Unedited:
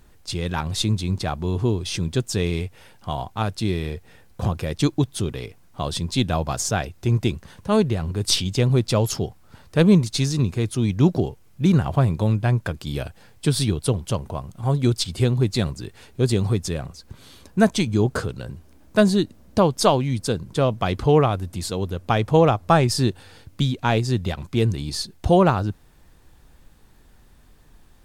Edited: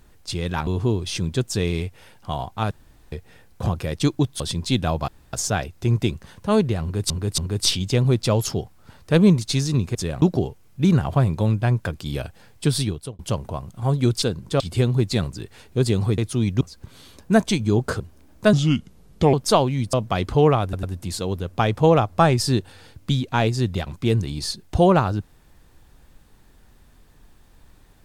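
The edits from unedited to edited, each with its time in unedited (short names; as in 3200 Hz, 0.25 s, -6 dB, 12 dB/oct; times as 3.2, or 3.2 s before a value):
0.67–1.46 cut
3.5–3.91 room tone
5.19–5.86 cut
6.54 insert room tone 0.25 s
8.03–8.31 loop, 3 plays
10.6–11.03 swap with 16.61–16.88
13.56–14 fade out
18.27–18.52 cut
19.05–19.66 speed 76%
20.26–20.64 move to 15.03
21.34 stutter 0.10 s, 3 plays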